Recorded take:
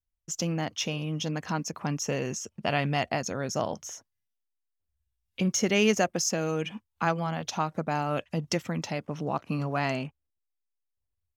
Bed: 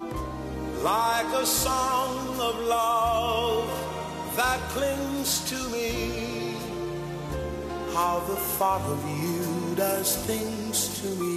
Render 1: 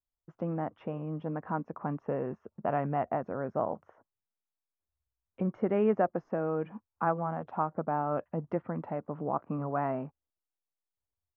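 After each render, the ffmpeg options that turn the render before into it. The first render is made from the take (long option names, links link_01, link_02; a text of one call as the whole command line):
ffmpeg -i in.wav -af "lowpass=frequency=1300:width=0.5412,lowpass=frequency=1300:width=1.3066,lowshelf=frequency=170:gain=-10" out.wav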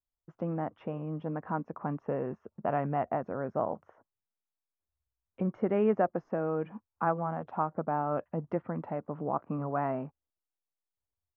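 ffmpeg -i in.wav -af anull out.wav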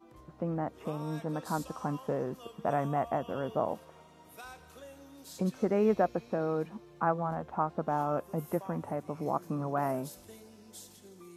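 ffmpeg -i in.wav -i bed.wav -filter_complex "[1:a]volume=-23dB[link_01];[0:a][link_01]amix=inputs=2:normalize=0" out.wav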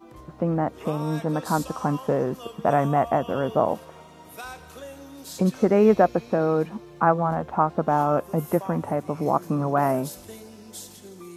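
ffmpeg -i in.wav -af "volume=9.5dB" out.wav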